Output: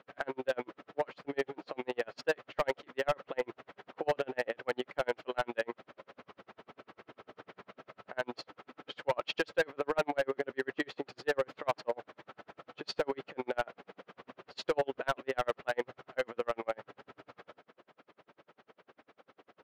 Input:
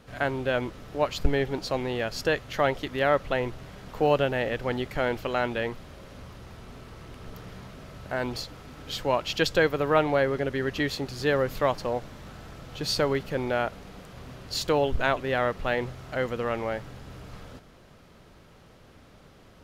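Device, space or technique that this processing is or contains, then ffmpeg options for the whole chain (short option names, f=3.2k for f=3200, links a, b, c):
helicopter radio: -af "highpass=370,lowpass=2.6k,aeval=exprs='val(0)*pow(10,-40*(0.5-0.5*cos(2*PI*10*n/s))/20)':c=same,asoftclip=type=hard:threshold=-25.5dB,volume=3dB"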